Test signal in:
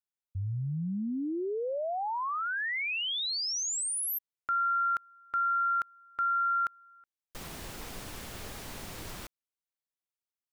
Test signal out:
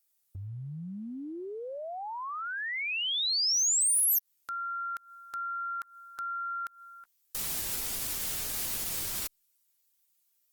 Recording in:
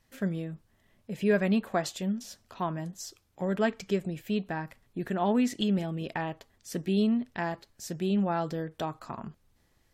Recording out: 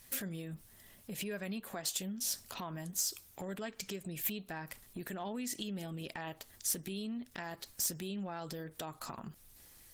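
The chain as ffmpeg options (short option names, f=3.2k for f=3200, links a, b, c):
-af "acompressor=threshold=-43dB:ratio=5:attack=0.76:release=146:knee=1:detection=rms,crystalizer=i=5:c=0,asoftclip=type=hard:threshold=-28dB,volume=4dB" -ar 48000 -c:a libopus -b:a 24k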